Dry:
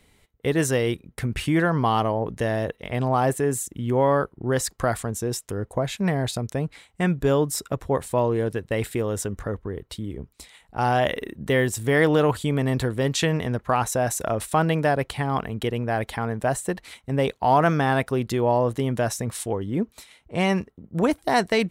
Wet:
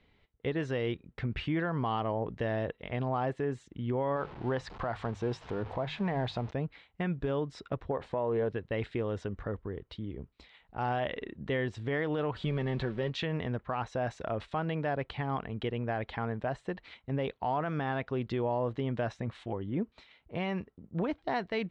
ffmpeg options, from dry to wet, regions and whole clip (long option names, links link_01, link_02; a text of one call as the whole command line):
ffmpeg -i in.wav -filter_complex "[0:a]asettb=1/sr,asplit=3[link_01][link_02][link_03];[link_01]atrim=end=4.164[link_04];[link_02]atrim=start=4.16:end=6.51,asetpts=PTS-STARTPTS,afade=type=in:duration=0.004:curve=qsin,afade=type=out:start_time=2.346:duration=0.004:curve=qsin,aeval=exprs='val(0)+0.5*0.0178*sgn(val(0))':channel_layout=same,equalizer=frequency=880:width=1.7:gain=7.5,bandreject=frequency=50:width_type=h:width=6,bandreject=frequency=100:width_type=h:width=6,bandreject=frequency=150:width_type=h:width=6[link_05];[link_03]atrim=start=6.506[link_06];[link_04][link_05]acrossfade=duration=0.004:curve1=hsin:curve2=qsin[link_07];[link_07][link_06]acrossfade=duration=0.004:curve1=qsin:curve2=hsin,asettb=1/sr,asplit=3[link_08][link_09][link_10];[link_08]atrim=end=7.914[link_11];[link_09]atrim=start=7.91:end=8.49,asetpts=PTS-STARTPTS,afade=type=in:duration=0.004:curve=qsin,afade=type=out:start_time=0.576:duration=0.004:curve=qsin,equalizer=frequency=660:width=0.43:gain=9,bandreject=frequency=330:width=9.5,acompressor=threshold=-20dB:ratio=3:attack=3.2:release=140:knee=1:detection=peak[link_12];[link_10]atrim=start=8.486[link_13];[link_11][link_12]acrossfade=duration=0.004:curve1=hsin:curve2=qsin[link_14];[link_14][link_13]acrossfade=duration=0.004:curve1=qsin:curve2=hsin,asettb=1/sr,asplit=3[link_15][link_16][link_17];[link_15]atrim=end=12.364[link_18];[link_16]atrim=start=12.36:end=13.1,asetpts=PTS-STARTPTS,afade=type=in:duration=0.004:curve=qsin,afade=type=out:start_time=0.736:duration=0.004:curve=qsin,aeval=exprs='val(0)+0.5*0.0168*sgn(val(0))':channel_layout=same,aecho=1:1:5.3:0.47,atrim=end_sample=32634[link_19];[link_17]atrim=start=13.096[link_20];[link_18][link_19]acrossfade=duration=0.004:curve1=hsin:curve2=qsin[link_21];[link_21][link_20]acrossfade=duration=0.004:curve1=qsin:curve2=hsin,asettb=1/sr,asplit=3[link_22][link_23][link_24];[link_22]atrim=end=19.124[link_25];[link_23]atrim=start=19.12:end=19.8,asetpts=PTS-STARTPTS,afade=type=in:duration=0.004:curve=qsin,afade=type=out:start_time=0.676:duration=0.004:curve=qsin,equalizer=frequency=5200:width_type=o:width=0.73:gain=-6.5,bandreject=frequency=450:width=9[link_26];[link_24]atrim=start=19.796[link_27];[link_25][link_26]acrossfade=duration=0.004:curve1=hsin:curve2=qsin[link_28];[link_28][link_27]acrossfade=duration=0.004:curve1=qsin:curve2=hsin,lowpass=frequency=3900:width=0.5412,lowpass=frequency=3900:width=1.3066,alimiter=limit=-15.5dB:level=0:latency=1:release=153,volume=-7dB" out.wav